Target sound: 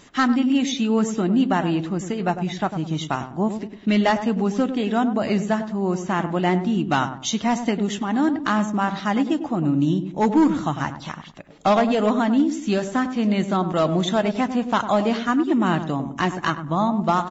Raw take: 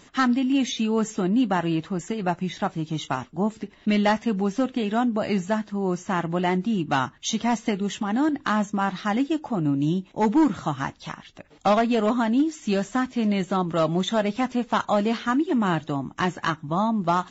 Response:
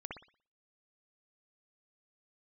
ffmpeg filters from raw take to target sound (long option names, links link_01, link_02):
-filter_complex "[0:a]asplit=2[link_01][link_02];[link_02]adelay=100,lowpass=frequency=850:poles=1,volume=-8dB,asplit=2[link_03][link_04];[link_04]adelay=100,lowpass=frequency=850:poles=1,volume=0.41,asplit=2[link_05][link_06];[link_06]adelay=100,lowpass=frequency=850:poles=1,volume=0.41,asplit=2[link_07][link_08];[link_08]adelay=100,lowpass=frequency=850:poles=1,volume=0.41,asplit=2[link_09][link_10];[link_10]adelay=100,lowpass=frequency=850:poles=1,volume=0.41[link_11];[link_01][link_03][link_05][link_07][link_09][link_11]amix=inputs=6:normalize=0,volume=2dB"